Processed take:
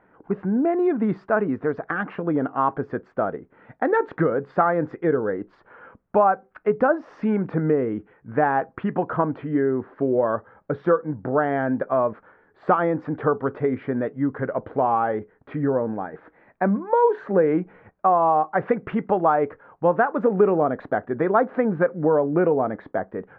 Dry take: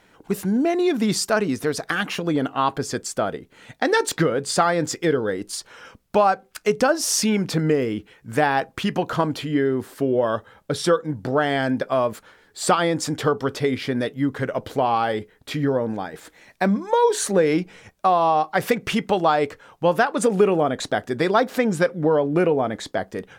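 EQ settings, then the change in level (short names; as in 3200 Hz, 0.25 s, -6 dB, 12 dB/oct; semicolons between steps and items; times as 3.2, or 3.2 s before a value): LPF 1600 Hz 24 dB/oct; low shelf 88 Hz -8.5 dB; 0.0 dB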